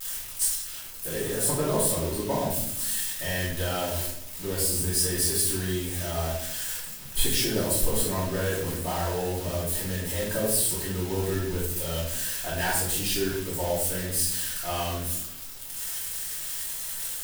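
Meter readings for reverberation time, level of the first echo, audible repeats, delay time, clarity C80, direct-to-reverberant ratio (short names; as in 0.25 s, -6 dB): 0.75 s, none, none, none, 6.0 dB, -9.5 dB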